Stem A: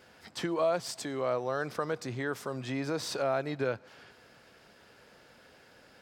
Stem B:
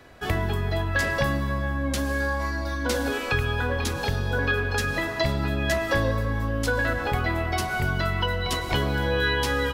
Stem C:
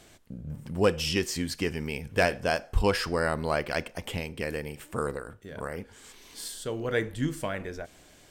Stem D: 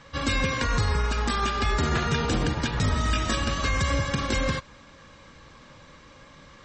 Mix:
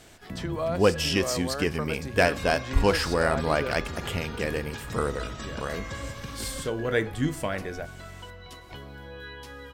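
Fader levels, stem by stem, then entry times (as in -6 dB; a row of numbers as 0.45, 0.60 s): -1.5, -18.0, +2.5, -12.5 dB; 0.00, 0.00, 0.00, 2.10 s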